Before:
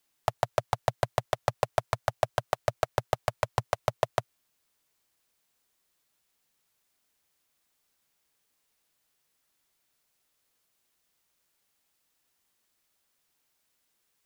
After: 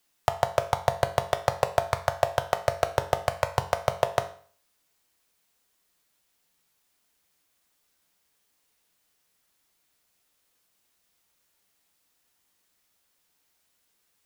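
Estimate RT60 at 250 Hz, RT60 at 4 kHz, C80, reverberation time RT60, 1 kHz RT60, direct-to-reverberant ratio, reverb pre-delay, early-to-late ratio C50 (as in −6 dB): 0.45 s, 0.45 s, 18.0 dB, 0.45 s, 0.45 s, 8.0 dB, 4 ms, 14.0 dB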